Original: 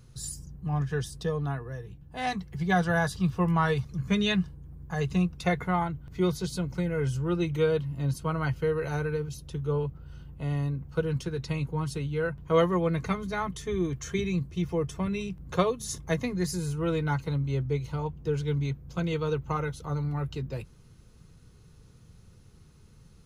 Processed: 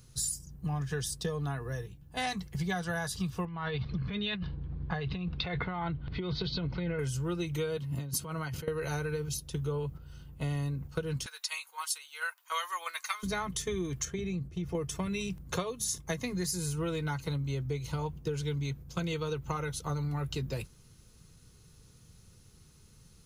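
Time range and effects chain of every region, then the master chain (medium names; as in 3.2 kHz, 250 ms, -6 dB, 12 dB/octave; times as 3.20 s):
3.45–6.99 s: steep low-pass 4.3 kHz 48 dB/octave + compressor with a negative ratio -32 dBFS
7.77–8.68 s: high-pass 80 Hz 24 dB/octave + compressor with a negative ratio -36 dBFS + tape noise reduction on one side only decoder only
11.26–13.23 s: high-pass 970 Hz 24 dB/octave + treble shelf 7 kHz +9 dB
14.05–14.75 s: treble shelf 2.1 kHz -12 dB + band-stop 1 kHz, Q 6 + compression 2.5:1, threshold -34 dBFS
whole clip: gate -40 dBFS, range -6 dB; treble shelf 3.3 kHz +11.5 dB; compression 10:1, threshold -32 dBFS; trim +2 dB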